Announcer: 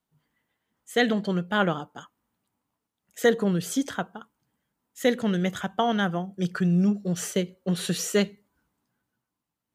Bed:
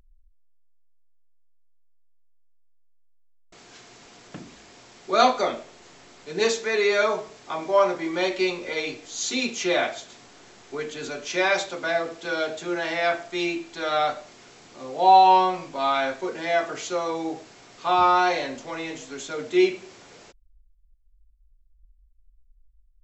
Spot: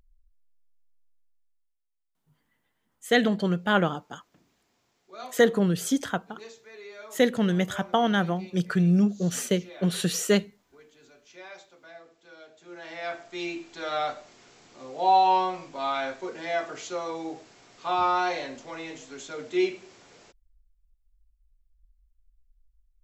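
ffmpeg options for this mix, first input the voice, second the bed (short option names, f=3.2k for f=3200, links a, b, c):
-filter_complex "[0:a]adelay=2150,volume=1dB[a];[1:a]volume=12.5dB,afade=t=out:st=1.06:d=0.71:silence=0.125893,afade=t=in:st=12.55:d=1.07:silence=0.133352[b];[a][b]amix=inputs=2:normalize=0"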